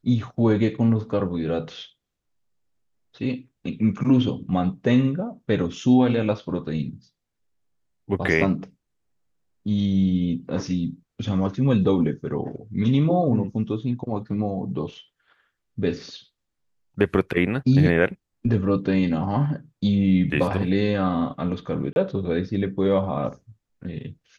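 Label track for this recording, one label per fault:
21.930000	21.960000	drop-out 31 ms

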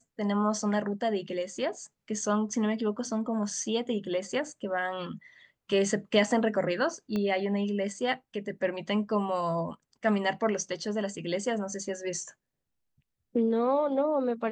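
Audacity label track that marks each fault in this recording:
7.160000	7.160000	click −20 dBFS

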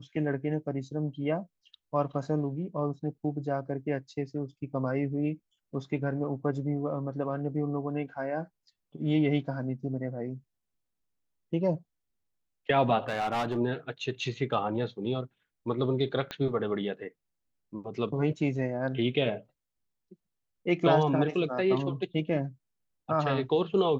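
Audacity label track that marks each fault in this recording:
13.080000	13.570000	clipping −26 dBFS
16.310000	16.310000	click −20 dBFS

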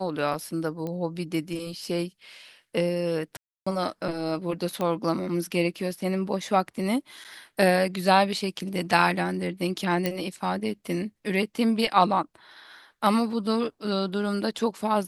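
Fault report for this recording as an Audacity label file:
0.870000	0.870000	click −21 dBFS
3.370000	3.670000	drop-out 295 ms
4.810000	4.810000	click −16 dBFS
7.240000	7.250000	drop-out 8.5 ms
10.060000	10.060000	click −11 dBFS

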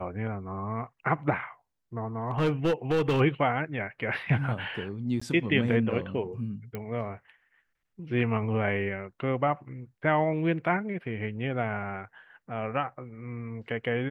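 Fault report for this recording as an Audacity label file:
2.280000	3.210000	clipping −21 dBFS
5.200000	5.210000	drop-out 15 ms
6.750000	6.750000	click −22 dBFS

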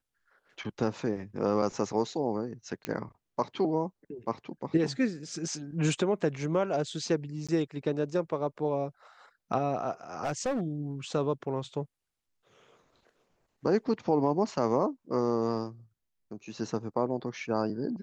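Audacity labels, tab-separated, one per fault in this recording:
2.850000	2.850000	click −17 dBFS
7.470000	7.490000	drop-out 16 ms
10.240000	10.620000	clipping −25.5 dBFS

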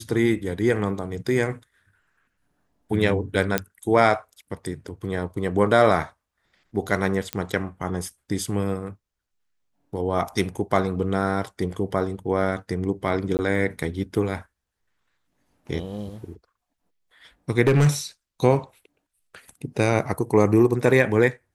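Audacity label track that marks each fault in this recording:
3.580000	3.580000	click −5 dBFS
7.330000	7.330000	click −10 dBFS
13.370000	13.390000	drop-out 19 ms
17.670000	17.890000	clipping −12.5 dBFS

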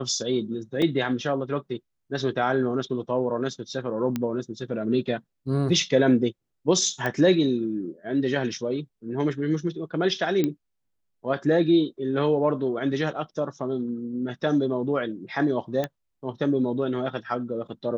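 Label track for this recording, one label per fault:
0.820000	0.820000	drop-out 3 ms
4.160000	4.160000	click −14 dBFS
7.060000	7.060000	click −14 dBFS
10.440000	10.440000	click −12 dBFS
15.840000	15.840000	click −14 dBFS

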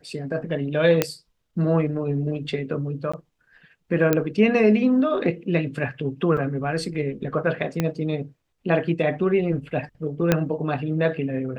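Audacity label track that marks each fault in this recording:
1.020000	1.020000	click −4 dBFS
3.120000	3.130000	drop-out 15 ms
4.130000	4.130000	click −6 dBFS
6.370000	6.380000	drop-out 5 ms
7.800000	7.800000	click −9 dBFS
10.320000	10.320000	click −4 dBFS

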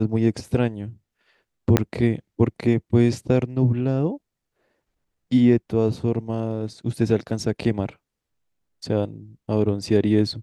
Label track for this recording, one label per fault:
1.770000	1.770000	click −3 dBFS

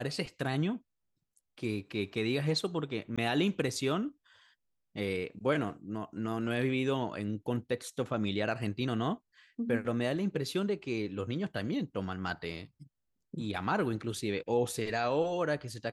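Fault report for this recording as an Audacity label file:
3.160000	3.180000	drop-out 16 ms

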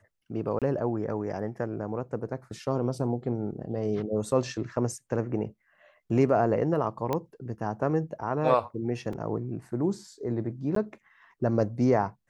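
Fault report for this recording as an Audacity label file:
0.590000	0.620000	drop-out 27 ms
7.130000	7.130000	click −15 dBFS
9.130000	9.130000	drop-out 3.2 ms
10.750000	10.760000	drop-out 13 ms

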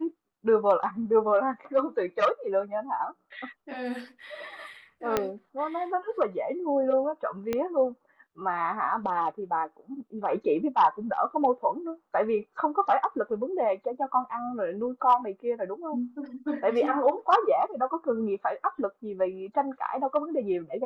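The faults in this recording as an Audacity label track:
5.170000	5.170000	click −10 dBFS
7.530000	7.530000	click −15 dBFS

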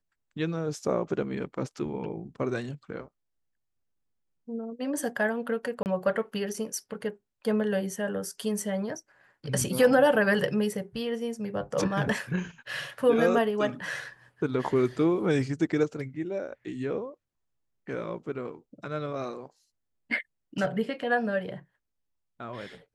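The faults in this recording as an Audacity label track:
5.830000	5.860000	drop-out 29 ms

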